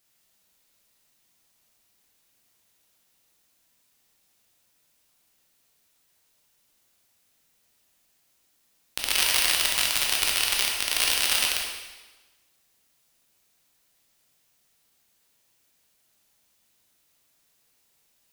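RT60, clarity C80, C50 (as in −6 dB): 1.2 s, 3.5 dB, 1.5 dB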